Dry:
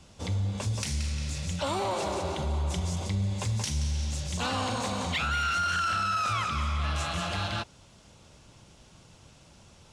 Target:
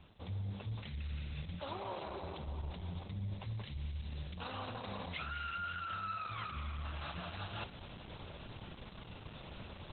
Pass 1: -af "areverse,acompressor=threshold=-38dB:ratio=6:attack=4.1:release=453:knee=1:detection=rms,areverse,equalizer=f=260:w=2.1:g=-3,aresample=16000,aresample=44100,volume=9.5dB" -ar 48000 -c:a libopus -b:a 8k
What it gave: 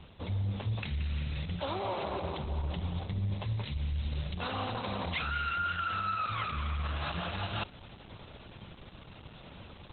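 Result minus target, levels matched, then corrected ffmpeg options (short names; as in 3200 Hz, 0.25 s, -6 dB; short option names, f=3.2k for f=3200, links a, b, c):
compressor: peak gain reduction -8 dB
-af "areverse,acompressor=threshold=-47.5dB:ratio=6:attack=4.1:release=453:knee=1:detection=rms,areverse,equalizer=f=260:w=2.1:g=-3,aresample=16000,aresample=44100,volume=9.5dB" -ar 48000 -c:a libopus -b:a 8k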